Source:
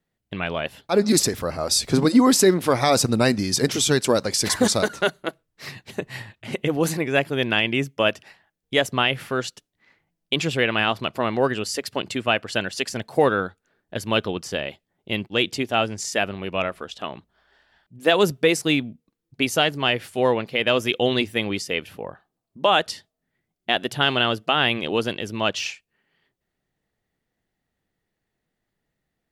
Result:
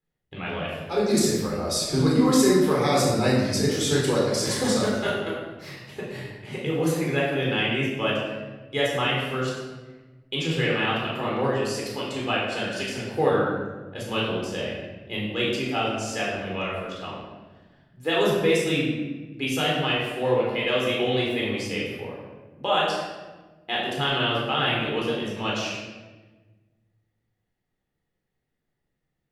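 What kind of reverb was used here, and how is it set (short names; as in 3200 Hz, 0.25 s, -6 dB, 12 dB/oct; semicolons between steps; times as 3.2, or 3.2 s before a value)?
shoebox room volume 900 m³, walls mixed, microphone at 4 m; gain -11.5 dB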